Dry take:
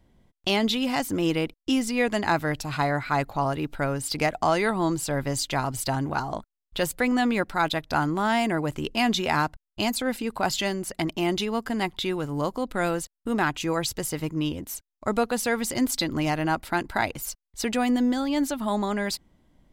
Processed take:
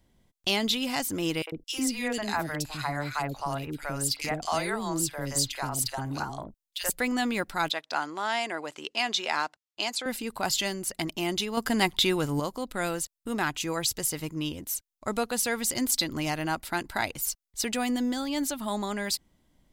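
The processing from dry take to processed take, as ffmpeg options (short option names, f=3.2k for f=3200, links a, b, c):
-filter_complex "[0:a]asettb=1/sr,asplit=3[a][b][c];[a]atrim=end=1.424[d];[b]atrim=start=1.42:end=6.9,asetpts=PTS-STARTPTS,afade=t=in:d=0.004:c=qsin,afade=t=out:st=5.476:d=0.004:c=qsin,acrossover=split=510|2300[e][f][g];[f]adelay=50[h];[e]adelay=100[i];[i][h][g]amix=inputs=3:normalize=0,atrim=end_sample=241668[j];[c]atrim=start=6.896[k];[d][j]acrossfade=d=0.004:c1=hsin:c2=qsin[l];[l][k]acrossfade=d=0.004:c1=qsin:c2=hsin,asettb=1/sr,asplit=3[m][n][o];[m]atrim=end=7.714[p];[n]atrim=start=7.71:end=10.06,asetpts=PTS-STARTPTS,afade=t=in:d=0.004:c=qsin,afade=t=out:st=2.346:d=0.004:c=qsin,highpass=440,lowpass=6.4k[q];[o]atrim=start=10.056[r];[p][q]acrossfade=d=0.004:c1=hsin:c2=qsin[s];[s][r]acrossfade=d=0.004:c1=qsin:c2=hsin,asettb=1/sr,asplit=3[t][u][v];[t]atrim=end=11.574[w];[u]atrim=start=11.57:end=12.4,asetpts=PTS-STARTPTS,afade=t=in:d=0.004:c=qsin,afade=t=out:st=0.826:d=0.004:c=qsin,acontrast=77[x];[v]atrim=start=12.396[y];[w][x]acrossfade=d=0.004:c1=hsin:c2=qsin[z];[z][y]acrossfade=d=0.004:c1=qsin:c2=hsin,highshelf=f=3k:g=10,volume=-5.5dB"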